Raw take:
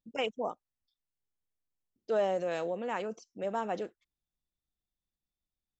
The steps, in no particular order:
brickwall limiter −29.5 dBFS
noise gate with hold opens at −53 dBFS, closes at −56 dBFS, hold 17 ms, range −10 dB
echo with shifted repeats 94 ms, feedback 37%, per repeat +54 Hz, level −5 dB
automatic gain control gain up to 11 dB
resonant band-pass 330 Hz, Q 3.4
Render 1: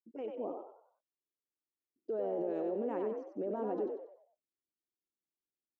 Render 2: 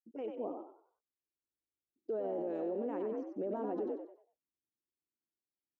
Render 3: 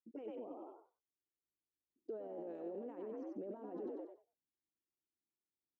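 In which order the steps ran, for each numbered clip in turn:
automatic gain control, then noise gate with hold, then resonant band-pass, then brickwall limiter, then echo with shifted repeats
noise gate with hold, then automatic gain control, then echo with shifted repeats, then resonant band-pass, then brickwall limiter
echo with shifted repeats, then noise gate with hold, then automatic gain control, then brickwall limiter, then resonant band-pass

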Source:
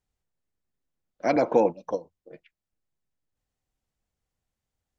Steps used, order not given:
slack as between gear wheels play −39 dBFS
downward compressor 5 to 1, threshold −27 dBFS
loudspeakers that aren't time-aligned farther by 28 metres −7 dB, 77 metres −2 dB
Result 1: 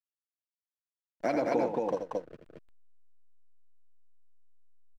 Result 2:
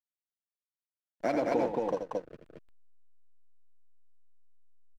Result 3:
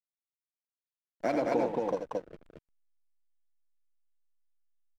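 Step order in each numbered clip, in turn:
slack as between gear wheels, then downward compressor, then loudspeakers that aren't time-aligned
downward compressor, then slack as between gear wheels, then loudspeakers that aren't time-aligned
downward compressor, then loudspeakers that aren't time-aligned, then slack as between gear wheels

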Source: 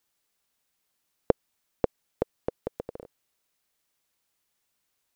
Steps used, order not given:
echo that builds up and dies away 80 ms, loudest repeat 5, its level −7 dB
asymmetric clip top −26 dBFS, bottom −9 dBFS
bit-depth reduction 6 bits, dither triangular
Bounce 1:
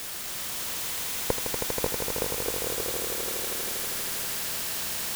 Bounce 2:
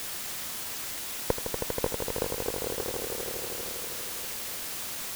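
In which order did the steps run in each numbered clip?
asymmetric clip, then bit-depth reduction, then echo that builds up and dies away
asymmetric clip, then echo that builds up and dies away, then bit-depth reduction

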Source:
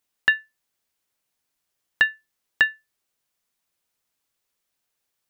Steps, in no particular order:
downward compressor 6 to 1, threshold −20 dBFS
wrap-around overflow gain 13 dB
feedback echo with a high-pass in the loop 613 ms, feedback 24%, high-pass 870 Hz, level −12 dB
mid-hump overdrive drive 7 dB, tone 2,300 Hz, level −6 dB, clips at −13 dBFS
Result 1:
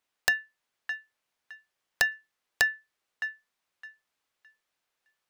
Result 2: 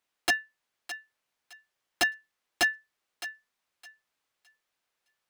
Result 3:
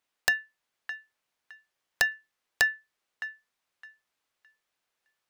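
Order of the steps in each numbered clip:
mid-hump overdrive, then feedback echo with a high-pass in the loop, then downward compressor, then wrap-around overflow
wrap-around overflow, then mid-hump overdrive, then downward compressor, then feedback echo with a high-pass in the loop
mid-hump overdrive, then downward compressor, then feedback echo with a high-pass in the loop, then wrap-around overflow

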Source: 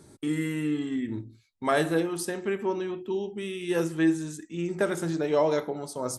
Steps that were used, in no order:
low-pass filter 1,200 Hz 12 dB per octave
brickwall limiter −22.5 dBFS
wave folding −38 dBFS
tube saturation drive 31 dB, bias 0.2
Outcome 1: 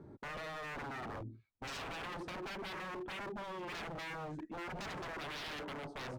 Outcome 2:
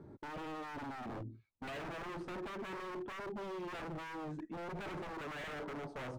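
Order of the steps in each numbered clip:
low-pass filter, then brickwall limiter, then wave folding, then tube saturation
brickwall limiter, then tube saturation, then low-pass filter, then wave folding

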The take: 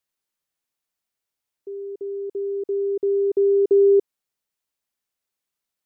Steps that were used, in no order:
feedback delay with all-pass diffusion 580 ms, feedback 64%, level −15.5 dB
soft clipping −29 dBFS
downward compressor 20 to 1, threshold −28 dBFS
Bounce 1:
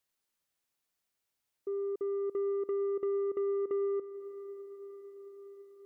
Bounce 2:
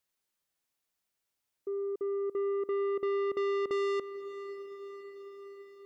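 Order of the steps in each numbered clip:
downward compressor, then soft clipping, then feedback delay with all-pass diffusion
soft clipping, then feedback delay with all-pass diffusion, then downward compressor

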